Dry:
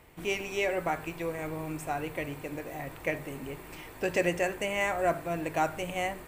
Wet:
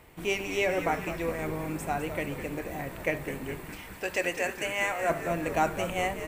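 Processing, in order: 3.70–5.10 s: high-pass 810 Hz 6 dB/octave; on a send: frequency-shifting echo 206 ms, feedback 62%, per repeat -110 Hz, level -10 dB; on the sum: trim +2 dB

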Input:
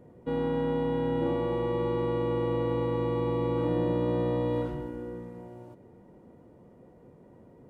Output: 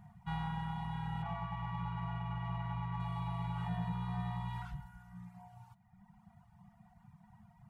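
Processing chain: reverb removal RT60 1.6 s; 1.22–3.00 s: low-pass 3.1 kHz 24 dB/octave; FFT band-reject 220–670 Hz; in parallel at -9 dB: hard clipper -39.5 dBFS, distortion -9 dB; on the sum: trim -1.5 dB

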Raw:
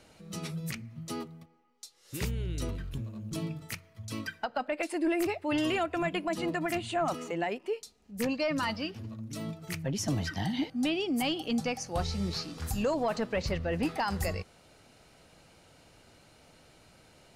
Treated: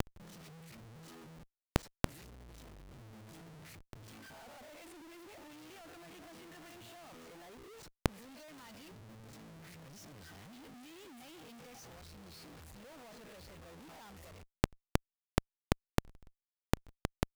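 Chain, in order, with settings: reverse spectral sustain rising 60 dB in 0.32 s; Schmitt trigger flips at -47 dBFS; inverted gate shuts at -40 dBFS, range -38 dB; trim +17.5 dB

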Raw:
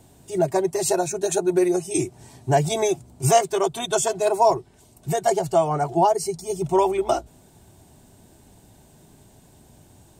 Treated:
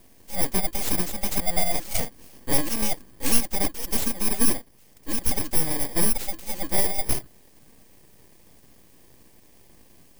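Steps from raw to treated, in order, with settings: bit-reversed sample order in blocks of 32 samples; full-wave rectifier

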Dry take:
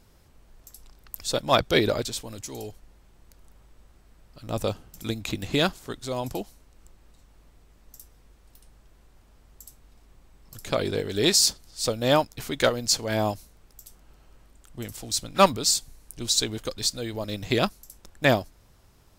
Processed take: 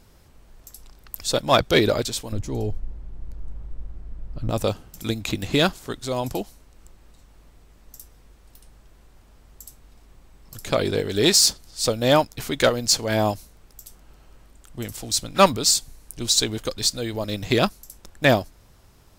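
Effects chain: 2.32–4.50 s: tilt EQ -3.5 dB/octave; in parallel at -4.5 dB: hard clipper -16.5 dBFS, distortion -12 dB

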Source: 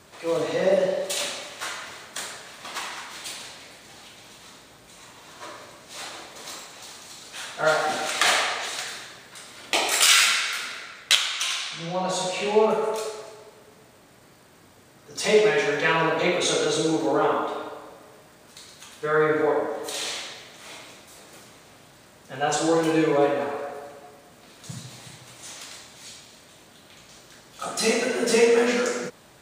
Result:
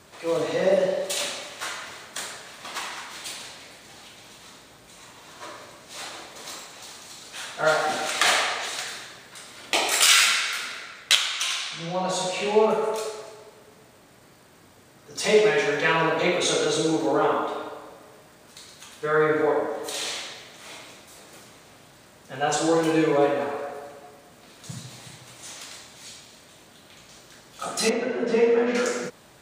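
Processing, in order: 27.89–28.75 s: tape spacing loss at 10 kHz 29 dB

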